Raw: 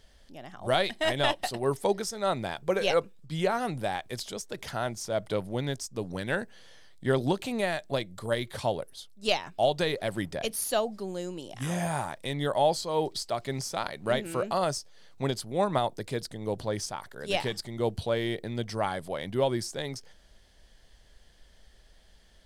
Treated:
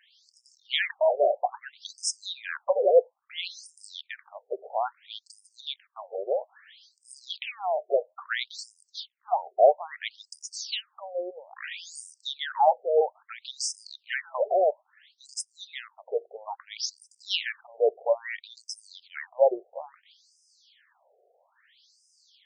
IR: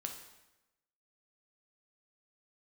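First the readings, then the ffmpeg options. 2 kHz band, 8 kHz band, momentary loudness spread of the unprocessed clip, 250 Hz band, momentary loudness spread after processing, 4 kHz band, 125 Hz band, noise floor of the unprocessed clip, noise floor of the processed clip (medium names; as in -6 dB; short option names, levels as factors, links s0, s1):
-0.5 dB, +0.5 dB, 10 LU, under -15 dB, 19 LU, +0.5 dB, under -40 dB, -58 dBFS, -74 dBFS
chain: -af "afftfilt=real='re*between(b*sr/1024,530*pow(7000/530,0.5+0.5*sin(2*PI*0.6*pts/sr))/1.41,530*pow(7000/530,0.5+0.5*sin(2*PI*0.6*pts/sr))*1.41)':imag='im*between(b*sr/1024,530*pow(7000/530,0.5+0.5*sin(2*PI*0.6*pts/sr))/1.41,530*pow(7000/530,0.5+0.5*sin(2*PI*0.6*pts/sr))*1.41)':win_size=1024:overlap=0.75,volume=2.37"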